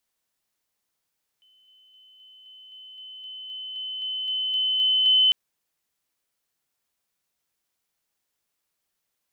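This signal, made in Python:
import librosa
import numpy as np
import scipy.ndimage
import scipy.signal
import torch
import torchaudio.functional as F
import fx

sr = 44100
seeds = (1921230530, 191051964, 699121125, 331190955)

y = fx.level_ladder(sr, hz=3040.0, from_db=-57.0, step_db=3.0, steps=15, dwell_s=0.26, gap_s=0.0)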